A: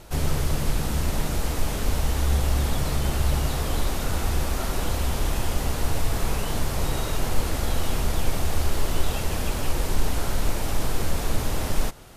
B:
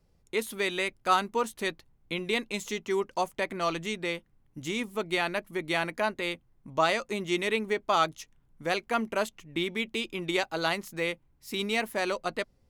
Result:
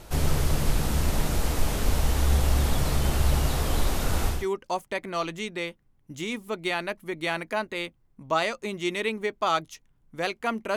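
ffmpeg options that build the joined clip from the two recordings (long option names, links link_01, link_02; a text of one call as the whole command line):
ffmpeg -i cue0.wav -i cue1.wav -filter_complex "[0:a]apad=whole_dur=10.76,atrim=end=10.76,atrim=end=4.47,asetpts=PTS-STARTPTS[link_01];[1:a]atrim=start=2.72:end=9.23,asetpts=PTS-STARTPTS[link_02];[link_01][link_02]acrossfade=duration=0.22:curve1=tri:curve2=tri" out.wav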